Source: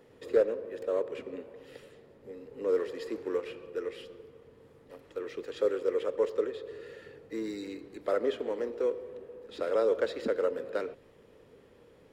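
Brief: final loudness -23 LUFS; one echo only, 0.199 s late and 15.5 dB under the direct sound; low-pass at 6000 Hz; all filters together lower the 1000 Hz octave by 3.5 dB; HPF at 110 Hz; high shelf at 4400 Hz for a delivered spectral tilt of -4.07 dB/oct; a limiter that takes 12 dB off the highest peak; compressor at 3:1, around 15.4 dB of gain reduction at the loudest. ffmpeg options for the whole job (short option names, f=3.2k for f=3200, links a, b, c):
-af "highpass=110,lowpass=6k,equalizer=f=1k:t=o:g=-4.5,highshelf=f=4.4k:g=-7.5,acompressor=threshold=-42dB:ratio=3,alimiter=level_in=16dB:limit=-24dB:level=0:latency=1,volume=-16dB,aecho=1:1:199:0.168,volume=26.5dB"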